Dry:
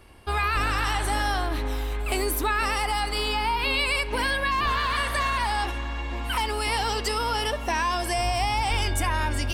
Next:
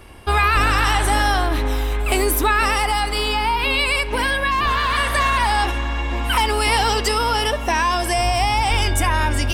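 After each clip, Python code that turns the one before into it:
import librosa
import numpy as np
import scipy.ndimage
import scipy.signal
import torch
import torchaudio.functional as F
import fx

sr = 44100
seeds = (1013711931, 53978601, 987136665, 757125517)

y = fx.notch(x, sr, hz=4400.0, q=15.0)
y = fx.rider(y, sr, range_db=10, speed_s=2.0)
y = y * 10.0 ** (6.5 / 20.0)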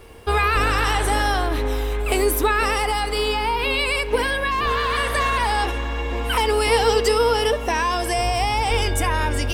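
y = fx.peak_eq(x, sr, hz=460.0, db=14.0, octaves=0.23)
y = fx.dmg_noise_colour(y, sr, seeds[0], colour='pink', level_db=-55.0)
y = y * 10.0 ** (-3.0 / 20.0)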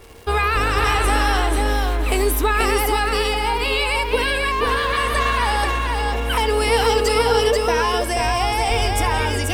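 y = fx.dmg_crackle(x, sr, seeds[1], per_s=310.0, level_db=-35.0)
y = y + 10.0 ** (-3.5 / 20.0) * np.pad(y, (int(485 * sr / 1000.0), 0))[:len(y)]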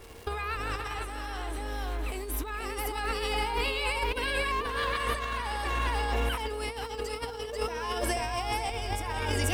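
y = fx.over_compress(x, sr, threshold_db=-22.0, ratio=-0.5)
y = fx.dmg_crackle(y, sr, seeds[2], per_s=170.0, level_db=-36.0)
y = y * 10.0 ** (-8.5 / 20.0)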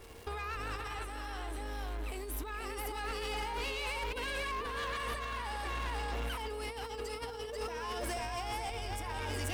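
y = 10.0 ** (-29.0 / 20.0) * np.tanh(x / 10.0 ** (-29.0 / 20.0))
y = y * 10.0 ** (-3.5 / 20.0)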